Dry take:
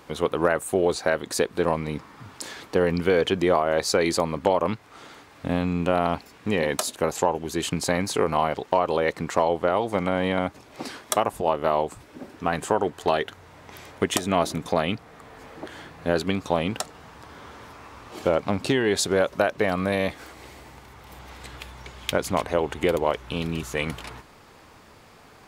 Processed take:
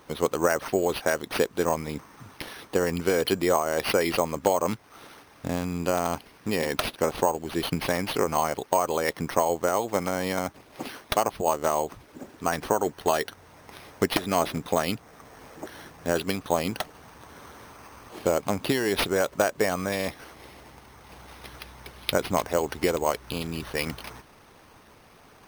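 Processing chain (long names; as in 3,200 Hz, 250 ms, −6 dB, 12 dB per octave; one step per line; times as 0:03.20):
bad sample-rate conversion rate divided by 6×, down none, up hold
harmonic and percussive parts rebalanced percussive +6 dB
level −6 dB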